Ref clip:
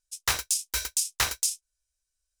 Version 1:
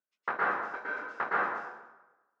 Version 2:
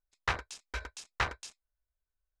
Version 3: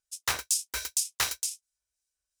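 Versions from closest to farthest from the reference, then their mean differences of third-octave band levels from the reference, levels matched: 3, 2, 1; 1.0, 11.0, 22.5 dB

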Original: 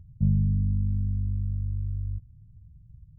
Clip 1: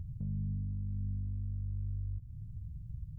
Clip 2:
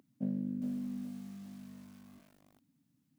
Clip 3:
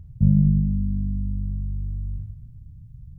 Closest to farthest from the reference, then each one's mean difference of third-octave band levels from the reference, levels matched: 3, 1, 2; 1.0, 2.5, 11.0 dB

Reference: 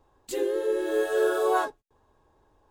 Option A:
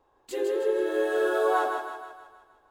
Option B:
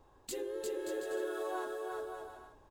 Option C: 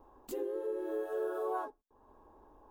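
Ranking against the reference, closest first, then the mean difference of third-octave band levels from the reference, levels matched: A, B, C; 2.5, 4.0, 5.0 dB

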